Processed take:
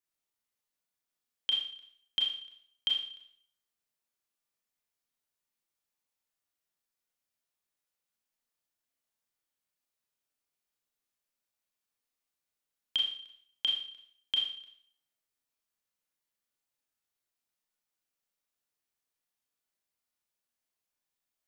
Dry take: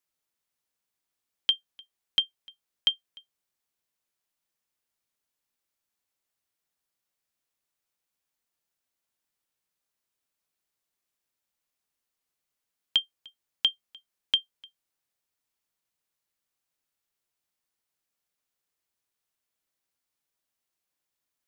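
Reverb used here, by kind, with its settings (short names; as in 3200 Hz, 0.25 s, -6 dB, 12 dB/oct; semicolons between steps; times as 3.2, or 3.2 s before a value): Schroeder reverb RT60 0.57 s, combs from 26 ms, DRR -1.5 dB; gain -7.5 dB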